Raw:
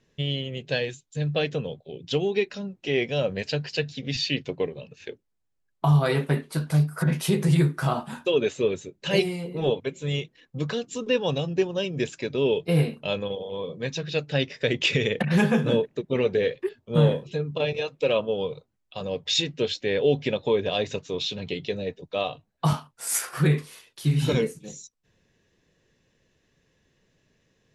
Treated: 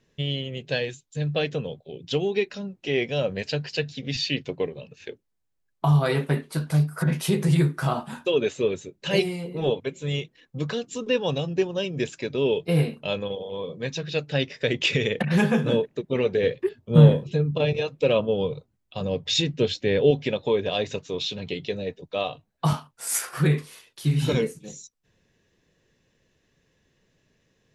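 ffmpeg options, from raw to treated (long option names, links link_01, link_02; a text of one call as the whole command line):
ffmpeg -i in.wav -filter_complex "[0:a]asettb=1/sr,asplit=3[link_01][link_02][link_03];[link_01]atrim=end=16.434[link_04];[link_02]atrim=start=16.43:end=20.11,asetpts=PTS-STARTPTS,afade=type=in:duration=0.004:curve=qsin,afade=type=out:start_time=3.676:duration=0.004:curve=qsin,equalizer=frequency=84:width=0.31:gain=8.5[link_05];[link_03]atrim=start=20.106[link_06];[link_04][link_05]acrossfade=duration=0.004:curve1=hsin:curve2=qsin[link_07];[link_07][link_06]acrossfade=duration=0.004:curve1=qsin:curve2=hsin" out.wav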